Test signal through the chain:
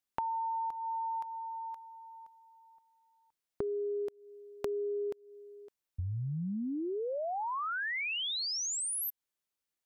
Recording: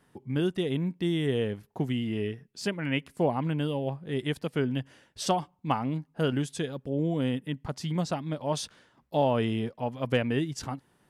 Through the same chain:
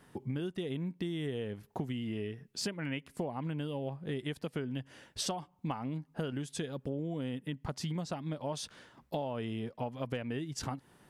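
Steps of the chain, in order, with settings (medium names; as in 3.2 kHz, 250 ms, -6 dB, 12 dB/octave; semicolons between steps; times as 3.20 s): compression 10:1, threshold -38 dBFS; trim +4.5 dB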